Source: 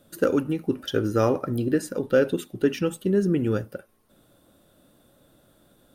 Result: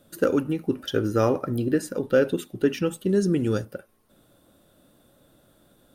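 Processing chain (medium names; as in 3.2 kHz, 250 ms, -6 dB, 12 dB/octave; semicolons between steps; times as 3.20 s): 3.09–3.65 s: high-order bell 6 kHz +9 dB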